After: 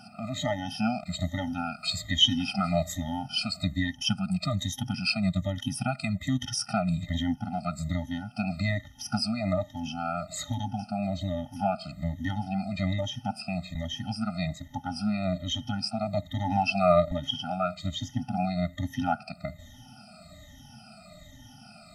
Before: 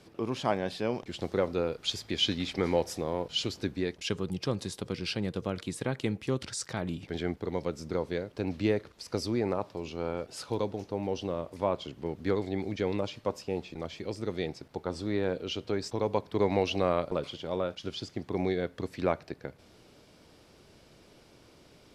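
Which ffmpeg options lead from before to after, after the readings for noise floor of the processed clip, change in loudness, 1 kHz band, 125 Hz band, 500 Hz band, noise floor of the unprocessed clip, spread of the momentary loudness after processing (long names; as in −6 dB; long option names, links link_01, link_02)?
−51 dBFS, +3.0 dB, +5.5 dB, +6.0 dB, −2.5 dB, −58 dBFS, 8 LU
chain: -filter_complex "[0:a]afftfilt=real='re*pow(10,24/40*sin(2*PI*(1.1*log(max(b,1)*sr/1024/100)/log(2)-(-1.2)*(pts-256)/sr)))':imag='im*pow(10,24/40*sin(2*PI*(1.1*log(max(b,1)*sr/1024/100)/log(2)-(-1.2)*(pts-256)/sr)))':win_size=1024:overlap=0.75,asplit=2[link_01][link_02];[link_02]acompressor=threshold=-32dB:ratio=16,volume=-1.5dB[link_03];[link_01][link_03]amix=inputs=2:normalize=0,afftfilt=real='re*eq(mod(floor(b*sr/1024/300),2),0)':imag='im*eq(mod(floor(b*sr/1024/300),2),0)':win_size=1024:overlap=0.75"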